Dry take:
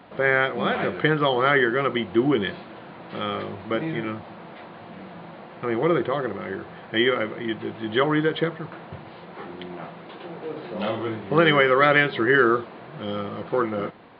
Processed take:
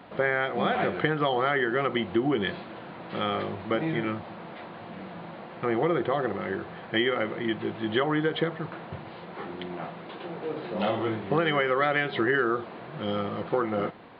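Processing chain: dynamic bell 740 Hz, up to +6 dB, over -42 dBFS, Q 5.4; compression 6:1, threshold -21 dBFS, peak gain reduction 9 dB

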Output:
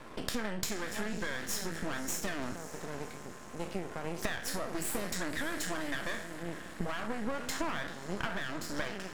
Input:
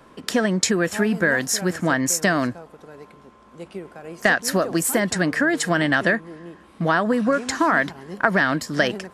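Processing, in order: spectral sustain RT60 0.40 s; compression 6:1, threshold -33 dBFS, peak gain reduction 19.5 dB; on a send: echo that smears into a reverb 559 ms, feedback 62%, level -14 dB; on the sum: half-wave rectifier; trim +3 dB

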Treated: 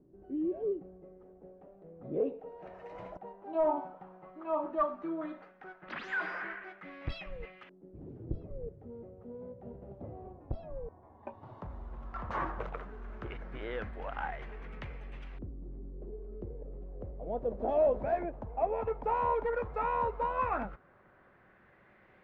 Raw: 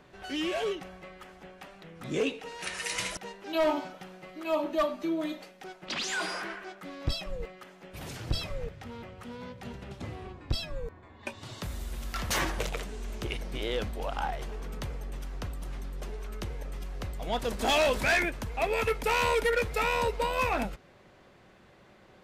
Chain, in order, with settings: LFO low-pass saw up 0.13 Hz 320–2600 Hz; trim -7 dB

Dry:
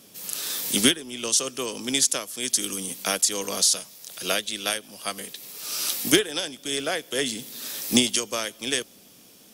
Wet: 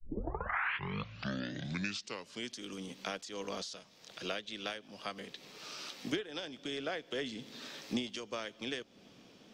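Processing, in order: tape start-up on the opening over 2.55 s; compression 2.5:1, threshold -35 dBFS, peak gain reduction 14.5 dB; distance through air 190 m; trim -1.5 dB

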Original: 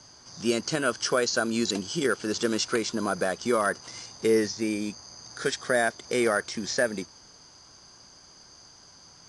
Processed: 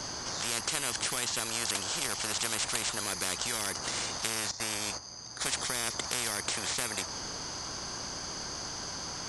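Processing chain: dynamic bell 3 kHz, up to -6 dB, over -44 dBFS, Q 0.81; 4.51–5.46 s: gate -38 dBFS, range -15 dB; spectrum-flattening compressor 10:1

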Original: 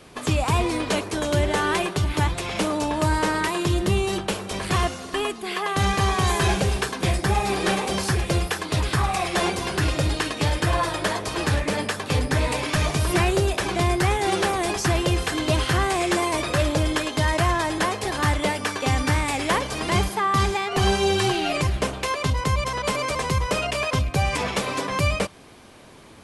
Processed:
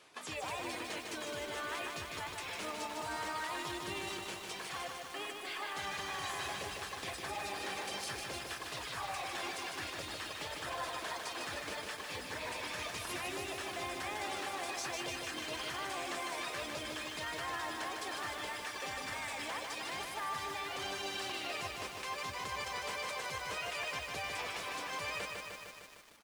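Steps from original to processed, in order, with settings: reverb removal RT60 1.5 s; high-pass 1.1 kHz 6 dB/octave; treble shelf 11 kHz -9 dB; peak limiter -24 dBFS, peak gain reduction 11.5 dB; harmony voices -5 st -8 dB, +7 st -17 dB; bit-crushed delay 152 ms, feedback 80%, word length 8-bit, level -3.5 dB; trim -9 dB

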